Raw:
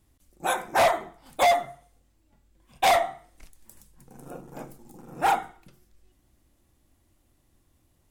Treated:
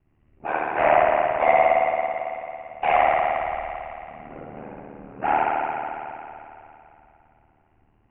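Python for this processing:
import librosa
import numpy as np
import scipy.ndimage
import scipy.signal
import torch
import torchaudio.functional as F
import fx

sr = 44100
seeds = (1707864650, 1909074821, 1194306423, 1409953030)

y = scipy.signal.sosfilt(scipy.signal.cheby1(6, 1.0, 2800.0, 'lowpass', fs=sr, output='sos'), x)
y = fx.rev_spring(y, sr, rt60_s=2.9, pass_ms=(55,), chirp_ms=35, drr_db=-7.0)
y = y * np.sin(2.0 * np.pi * 38.0 * np.arange(len(y)) / sr)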